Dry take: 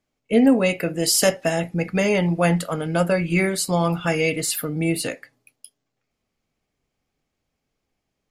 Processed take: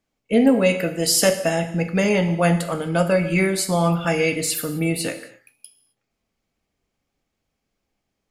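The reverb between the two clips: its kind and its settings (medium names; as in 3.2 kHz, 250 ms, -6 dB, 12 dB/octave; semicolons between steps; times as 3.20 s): gated-style reverb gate 290 ms falling, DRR 8 dB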